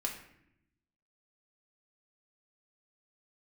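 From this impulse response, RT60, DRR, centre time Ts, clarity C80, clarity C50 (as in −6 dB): 0.75 s, −1.0 dB, 24 ms, 10.0 dB, 7.0 dB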